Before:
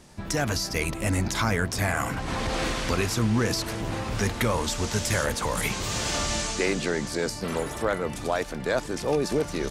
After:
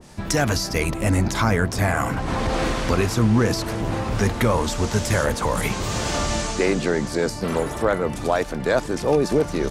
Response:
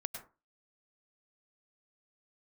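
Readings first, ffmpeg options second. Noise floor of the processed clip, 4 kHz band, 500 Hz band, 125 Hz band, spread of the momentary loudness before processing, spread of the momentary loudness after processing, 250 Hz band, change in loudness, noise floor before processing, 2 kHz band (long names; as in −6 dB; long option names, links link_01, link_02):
−31 dBFS, +1.0 dB, +6.0 dB, +6.0 dB, 4 LU, 5 LU, +6.0 dB, +4.5 dB, −36 dBFS, +3.0 dB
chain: -af "adynamicequalizer=threshold=0.00794:dfrequency=1600:dqfactor=0.7:tfrequency=1600:tqfactor=0.7:attack=5:release=100:ratio=0.375:range=3:mode=cutabove:tftype=highshelf,volume=6dB"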